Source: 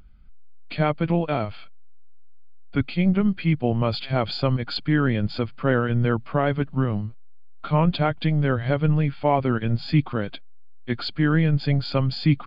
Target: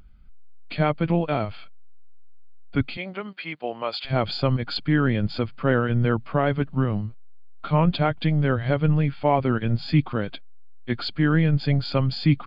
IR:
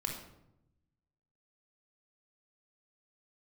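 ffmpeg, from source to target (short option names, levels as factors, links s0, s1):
-filter_complex "[0:a]asettb=1/sr,asplit=3[s0][s1][s2];[s0]atrim=end=2.974[s3];[s1]atrim=start=2.97:end=4.05,asetpts=PTS-STARTPTS,afade=t=in:d=0.004:c=qsin,afade=t=out:st=1.076:d=0.004:c=qsin,highpass=560[s4];[s2]atrim=start=4.046[s5];[s3][s4]acrossfade=d=0.004:c1=hsin:c2=qsin[s6];[s6][s5]acrossfade=d=0.004:c1=qsin:c2=hsin"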